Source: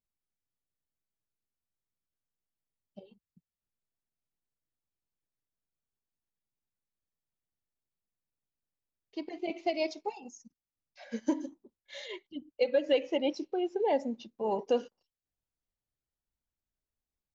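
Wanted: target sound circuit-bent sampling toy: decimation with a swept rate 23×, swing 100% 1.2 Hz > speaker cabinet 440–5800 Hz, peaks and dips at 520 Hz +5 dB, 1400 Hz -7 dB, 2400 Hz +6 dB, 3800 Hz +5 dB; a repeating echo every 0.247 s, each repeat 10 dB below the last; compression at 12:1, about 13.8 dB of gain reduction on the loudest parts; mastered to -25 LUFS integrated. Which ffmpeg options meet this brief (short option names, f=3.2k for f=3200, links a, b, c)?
-af "acompressor=threshold=-36dB:ratio=12,aecho=1:1:247|494|741|988:0.316|0.101|0.0324|0.0104,acrusher=samples=23:mix=1:aa=0.000001:lfo=1:lforange=23:lforate=1.2,highpass=440,equalizer=f=520:t=q:w=4:g=5,equalizer=f=1.4k:t=q:w=4:g=-7,equalizer=f=2.4k:t=q:w=4:g=6,equalizer=f=3.8k:t=q:w=4:g=5,lowpass=f=5.8k:w=0.5412,lowpass=f=5.8k:w=1.3066,volume=18dB"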